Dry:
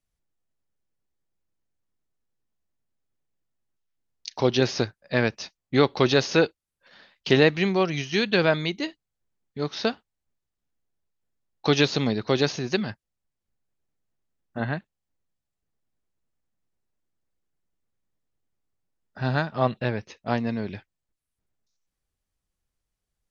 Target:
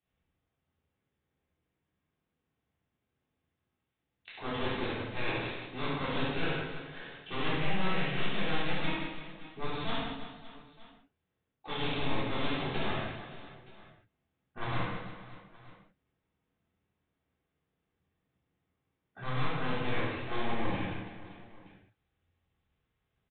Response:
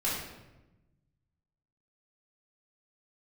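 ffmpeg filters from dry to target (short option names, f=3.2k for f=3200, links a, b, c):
-filter_complex "[0:a]highpass=69,areverse,acompressor=threshold=-31dB:ratio=8,areverse,aeval=exprs='0.133*(cos(1*acos(clip(val(0)/0.133,-1,1)))-cos(1*PI/2))+0.0335*(cos(7*acos(clip(val(0)/0.133,-1,1)))-cos(7*PI/2))':c=same,aresample=8000,asoftclip=type=tanh:threshold=-31.5dB,aresample=44100,aecho=1:1:70|175|332.5|568.8|923.1:0.631|0.398|0.251|0.158|0.1[a];[1:a]atrim=start_sample=2205,afade=t=out:st=0.27:d=0.01,atrim=end_sample=12348[b];[a][b]afir=irnorm=-1:irlink=0"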